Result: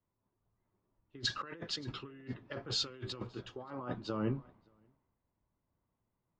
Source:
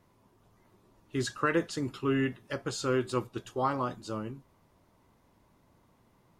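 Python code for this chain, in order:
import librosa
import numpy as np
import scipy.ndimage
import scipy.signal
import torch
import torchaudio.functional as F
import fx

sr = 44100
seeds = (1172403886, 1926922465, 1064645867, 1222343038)

y = scipy.signal.sosfilt(scipy.signal.butter(4, 4600.0, 'lowpass', fs=sr, output='sos'), x)
y = fx.over_compress(y, sr, threshold_db=-38.0, ratio=-1.0)
y = y + 10.0 ** (-18.5 / 20.0) * np.pad(y, (int(580 * sr / 1000.0), 0))[:len(y)]
y = fx.band_widen(y, sr, depth_pct=100)
y = y * librosa.db_to_amplitude(-5.0)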